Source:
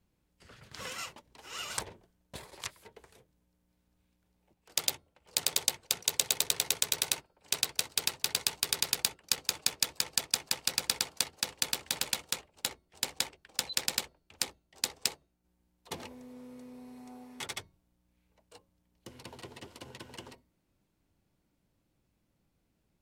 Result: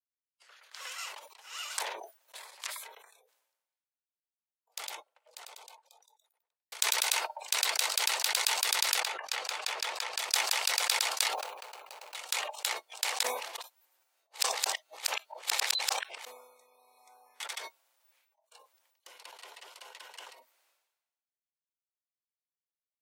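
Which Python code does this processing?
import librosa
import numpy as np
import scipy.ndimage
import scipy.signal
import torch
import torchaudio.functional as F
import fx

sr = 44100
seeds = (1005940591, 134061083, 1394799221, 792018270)

y = fx.studio_fade_out(x, sr, start_s=2.91, length_s=3.81)
y = fx.lowpass(y, sr, hz=2600.0, slope=6, at=(9.0, 10.19))
y = fx.median_filter(y, sr, points=25, at=(11.33, 12.15))
y = fx.edit(y, sr, fx.reverse_span(start_s=13.23, length_s=3.02), tone=tone)
y = scipy.signal.sosfilt(scipy.signal.bessel(6, 920.0, 'highpass', norm='mag', fs=sr, output='sos'), y)
y = fx.noise_reduce_blind(y, sr, reduce_db=27)
y = fx.sustainer(y, sr, db_per_s=55.0)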